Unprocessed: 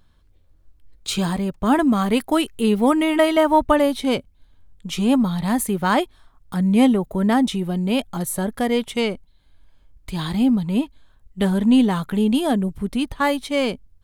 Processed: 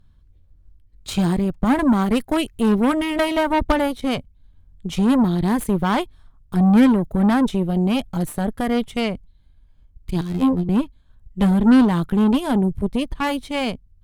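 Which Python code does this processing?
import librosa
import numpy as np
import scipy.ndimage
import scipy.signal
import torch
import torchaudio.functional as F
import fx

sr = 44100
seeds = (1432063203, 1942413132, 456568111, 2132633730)

y = fx.bass_treble(x, sr, bass_db=12, treble_db=-1)
y = fx.robotise(y, sr, hz=88.2, at=(10.21, 10.69))
y = fx.cheby_harmonics(y, sr, harmonics=(3, 8), levels_db=(-20, -20), full_scale_db=-1.0)
y = y * librosa.db_to_amplitude(-3.0)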